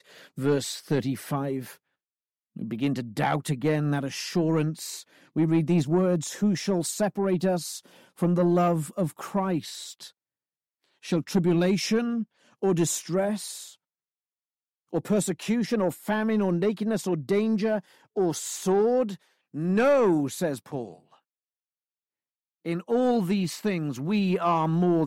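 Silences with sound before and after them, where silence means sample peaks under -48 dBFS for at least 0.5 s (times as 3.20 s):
1.76–2.56 s
10.10–11.03 s
13.75–14.93 s
21.15–22.65 s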